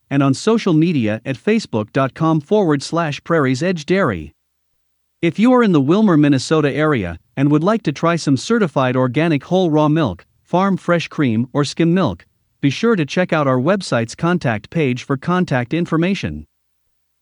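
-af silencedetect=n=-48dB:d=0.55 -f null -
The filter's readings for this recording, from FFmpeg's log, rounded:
silence_start: 4.31
silence_end: 5.22 | silence_duration: 0.91
silence_start: 16.45
silence_end: 17.22 | silence_duration: 0.77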